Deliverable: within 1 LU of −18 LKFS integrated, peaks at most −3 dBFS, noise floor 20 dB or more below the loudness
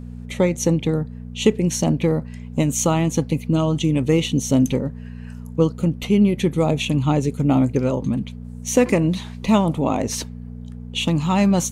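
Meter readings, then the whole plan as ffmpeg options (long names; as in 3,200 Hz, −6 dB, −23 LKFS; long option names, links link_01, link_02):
mains hum 60 Hz; hum harmonics up to 240 Hz; level of the hum −32 dBFS; integrated loudness −20.5 LKFS; sample peak −3.0 dBFS; target loudness −18.0 LKFS
→ -af "bandreject=frequency=60:width_type=h:width=4,bandreject=frequency=120:width_type=h:width=4,bandreject=frequency=180:width_type=h:width=4,bandreject=frequency=240:width_type=h:width=4"
-af "volume=2.5dB,alimiter=limit=-3dB:level=0:latency=1"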